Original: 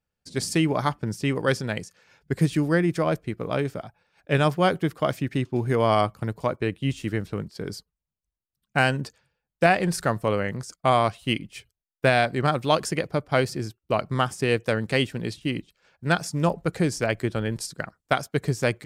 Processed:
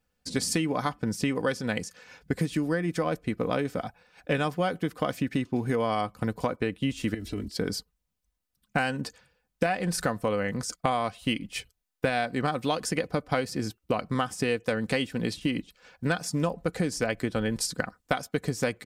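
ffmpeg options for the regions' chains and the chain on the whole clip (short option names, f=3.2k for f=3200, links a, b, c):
-filter_complex "[0:a]asettb=1/sr,asplit=3[a][b][c];[a]atrim=end=7.144[d];[b]atrim=start=7.14:end=7.57,asetpts=PTS-STARTPTS,afade=t=in:d=0.004:c=qsin,afade=t=out:st=0.426:d=0.004:c=qsin,equalizer=f=1k:t=o:w=1.5:g=-14,aecho=1:1:3:0.95,atrim=end_sample=18963,acompressor=threshold=-35dB:ratio=4:attack=3.2:release=140:knee=1:detection=peak[e];[c]atrim=start=7.566[f];[d][e]acrossfade=d=0.004:c1=hsin:c2=qsin[g];[g][f]acrossfade=d=0.004:c1=qsin:c2=hsin,aecho=1:1:4:0.44,acompressor=threshold=-31dB:ratio=6,volume=6.5dB"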